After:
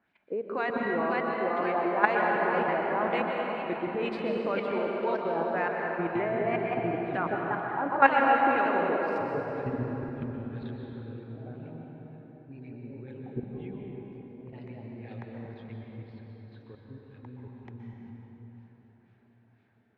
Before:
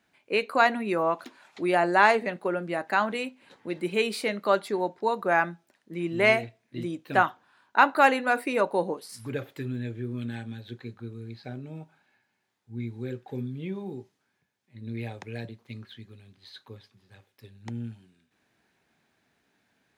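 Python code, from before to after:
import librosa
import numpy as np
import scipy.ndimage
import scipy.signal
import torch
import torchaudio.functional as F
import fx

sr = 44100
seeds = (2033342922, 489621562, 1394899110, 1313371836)

y = fx.echo_pitch(x, sr, ms=558, semitones=1, count=3, db_per_echo=-6.0)
y = fx.filter_lfo_lowpass(y, sr, shape='sine', hz=2.0, low_hz=480.0, high_hz=2800.0, q=1.2)
y = fx.level_steps(y, sr, step_db=15)
y = fx.rev_plate(y, sr, seeds[0], rt60_s=4.1, hf_ratio=0.65, predelay_ms=110, drr_db=-0.5)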